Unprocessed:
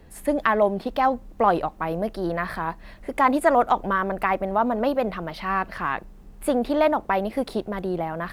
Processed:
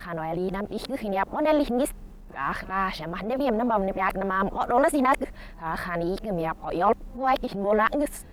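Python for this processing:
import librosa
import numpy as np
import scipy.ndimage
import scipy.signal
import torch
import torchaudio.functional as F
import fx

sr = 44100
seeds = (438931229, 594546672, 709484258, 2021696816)

y = np.flip(x).copy()
y = fx.transient(y, sr, attack_db=-10, sustain_db=3)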